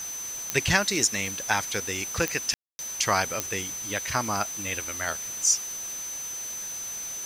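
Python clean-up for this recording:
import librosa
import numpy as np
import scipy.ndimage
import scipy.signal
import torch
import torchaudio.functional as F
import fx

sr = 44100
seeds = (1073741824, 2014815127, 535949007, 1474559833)

y = fx.fix_declick_ar(x, sr, threshold=10.0)
y = fx.notch(y, sr, hz=6100.0, q=30.0)
y = fx.fix_ambience(y, sr, seeds[0], print_start_s=0.0, print_end_s=0.5, start_s=2.54, end_s=2.79)
y = fx.noise_reduce(y, sr, print_start_s=0.0, print_end_s=0.5, reduce_db=30.0)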